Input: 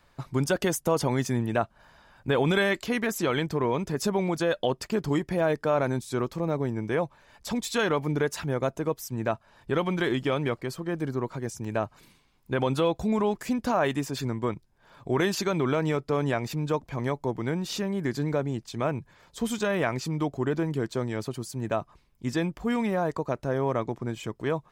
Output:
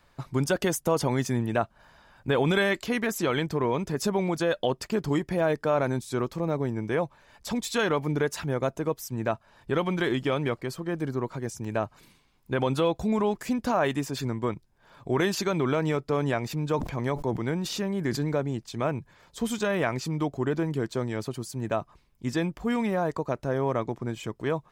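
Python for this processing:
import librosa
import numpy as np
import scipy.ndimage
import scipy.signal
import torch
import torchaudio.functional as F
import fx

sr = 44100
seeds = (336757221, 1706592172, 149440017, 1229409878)

y = fx.sustainer(x, sr, db_per_s=91.0, at=(16.71, 18.31))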